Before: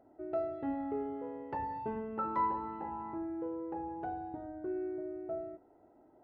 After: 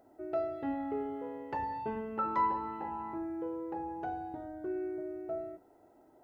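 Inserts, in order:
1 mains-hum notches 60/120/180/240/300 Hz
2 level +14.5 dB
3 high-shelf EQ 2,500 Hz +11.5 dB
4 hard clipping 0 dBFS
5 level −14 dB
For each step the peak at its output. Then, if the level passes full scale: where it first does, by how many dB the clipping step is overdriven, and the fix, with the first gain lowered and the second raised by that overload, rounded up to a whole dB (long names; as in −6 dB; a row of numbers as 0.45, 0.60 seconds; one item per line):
−22.0, −7.5, −6.0, −6.0, −20.0 dBFS
no step passes full scale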